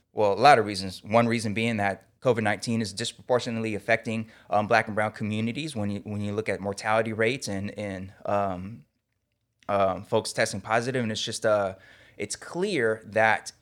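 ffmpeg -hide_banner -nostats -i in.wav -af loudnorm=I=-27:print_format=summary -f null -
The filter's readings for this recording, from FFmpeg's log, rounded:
Input Integrated:    -26.3 LUFS
Input True Peak:      -5.0 dBTP
Input LRA:             2.9 LU
Input Threshold:     -36.6 LUFS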